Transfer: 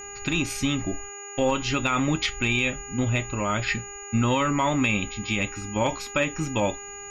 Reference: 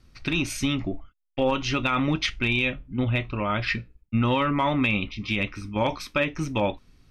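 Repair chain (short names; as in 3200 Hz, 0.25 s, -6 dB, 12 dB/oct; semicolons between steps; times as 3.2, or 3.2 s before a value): de-hum 404.4 Hz, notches 7; notch 6800 Hz, Q 30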